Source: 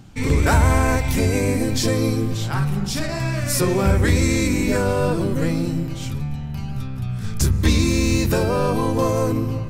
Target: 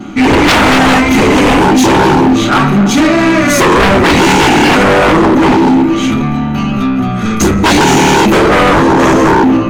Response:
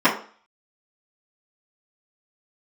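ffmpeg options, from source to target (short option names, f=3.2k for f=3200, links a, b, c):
-filter_complex "[1:a]atrim=start_sample=2205,afade=t=out:st=0.15:d=0.01,atrim=end_sample=7056,asetrate=52920,aresample=44100[a];[0:a][a]afir=irnorm=-1:irlink=0,acontrast=86,volume=-4dB"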